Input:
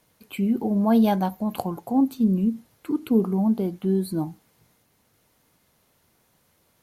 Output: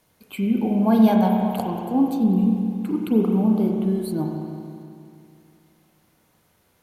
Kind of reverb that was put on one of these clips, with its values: spring tank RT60 2.6 s, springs 32/40 ms, chirp 65 ms, DRR 1 dB

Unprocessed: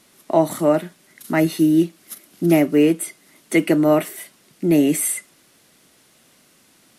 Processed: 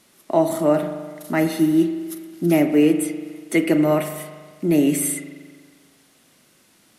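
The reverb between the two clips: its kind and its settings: spring tank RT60 1.6 s, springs 40 ms, chirp 30 ms, DRR 7.5 dB; gain -2 dB

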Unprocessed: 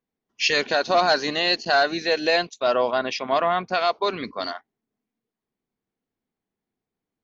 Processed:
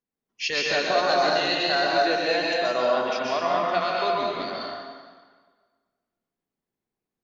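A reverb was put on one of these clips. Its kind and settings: plate-style reverb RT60 1.6 s, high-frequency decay 0.85×, pre-delay 0.11 s, DRR -3.5 dB; gain -6.5 dB

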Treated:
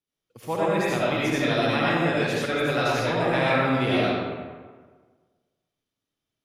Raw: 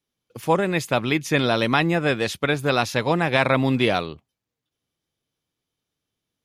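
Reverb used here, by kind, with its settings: digital reverb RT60 1.5 s, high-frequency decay 0.6×, pre-delay 40 ms, DRR -7.5 dB; gain -10 dB

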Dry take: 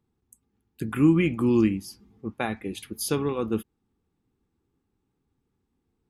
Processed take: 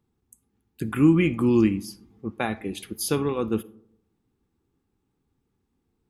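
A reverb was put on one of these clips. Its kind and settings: digital reverb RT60 0.71 s, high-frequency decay 0.35×, pre-delay 15 ms, DRR 19 dB; gain +1.5 dB

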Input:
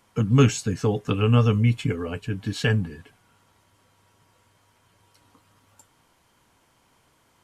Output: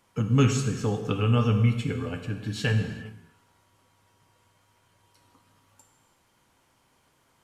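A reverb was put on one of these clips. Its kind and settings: non-linear reverb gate 0.43 s falling, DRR 5 dB; gain -4 dB

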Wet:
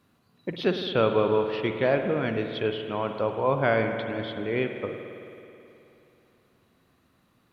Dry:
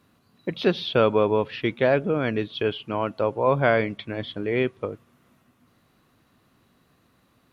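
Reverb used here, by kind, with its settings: spring tank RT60 2.9 s, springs 53 ms, chirp 55 ms, DRR 5.5 dB; gain -3.5 dB

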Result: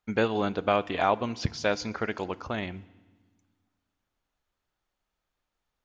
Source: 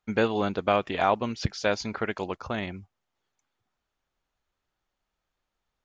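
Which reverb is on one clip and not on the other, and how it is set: FDN reverb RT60 1.3 s, low-frequency decay 1.6×, high-frequency decay 1×, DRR 18 dB; gain -1 dB

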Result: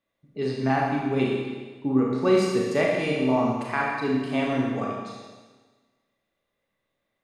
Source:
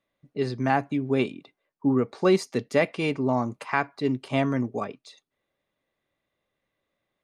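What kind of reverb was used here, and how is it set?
Schroeder reverb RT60 1.4 s, combs from 27 ms, DRR -3 dB; gain -3.5 dB

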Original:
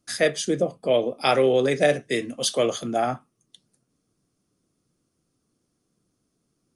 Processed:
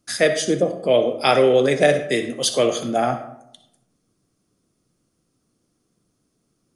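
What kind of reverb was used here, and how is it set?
digital reverb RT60 0.79 s, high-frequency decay 0.5×, pre-delay 20 ms, DRR 9 dB; gain +3.5 dB

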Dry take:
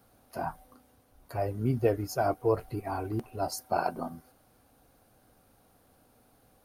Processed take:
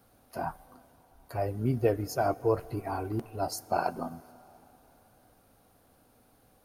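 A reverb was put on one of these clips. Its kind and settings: plate-style reverb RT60 4.1 s, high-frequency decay 0.75×, DRR 20 dB

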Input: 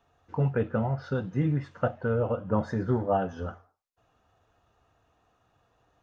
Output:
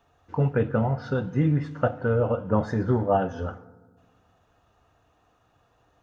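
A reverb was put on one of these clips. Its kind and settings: FDN reverb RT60 1.4 s, low-frequency decay 1.4×, high-frequency decay 0.4×, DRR 16.5 dB; gain +3.5 dB

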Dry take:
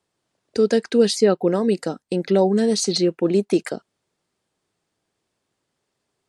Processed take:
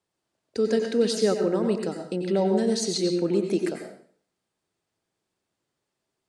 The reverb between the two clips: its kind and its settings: plate-style reverb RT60 0.54 s, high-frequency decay 0.95×, pre-delay 80 ms, DRR 4 dB; gain -6.5 dB

